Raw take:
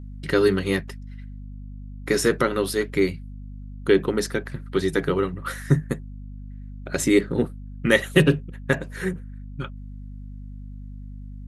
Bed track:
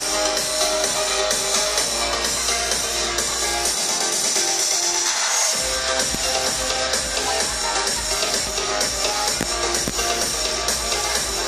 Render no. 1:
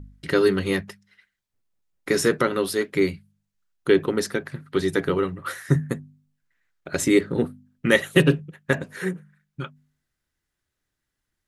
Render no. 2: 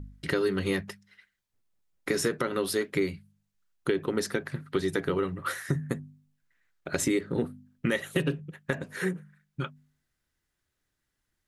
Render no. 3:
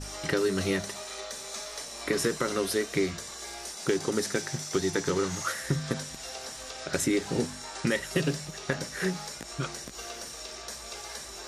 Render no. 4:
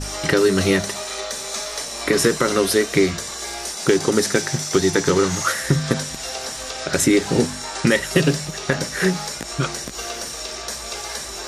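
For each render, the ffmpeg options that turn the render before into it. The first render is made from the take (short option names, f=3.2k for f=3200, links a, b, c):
-af "bandreject=f=50:t=h:w=4,bandreject=f=100:t=h:w=4,bandreject=f=150:t=h:w=4,bandreject=f=200:t=h:w=4,bandreject=f=250:t=h:w=4"
-af "alimiter=limit=-10dB:level=0:latency=1:release=282,acompressor=threshold=-25dB:ratio=3"
-filter_complex "[1:a]volume=-18.5dB[a];[0:a][a]amix=inputs=2:normalize=0"
-af "volume=10.5dB,alimiter=limit=-3dB:level=0:latency=1"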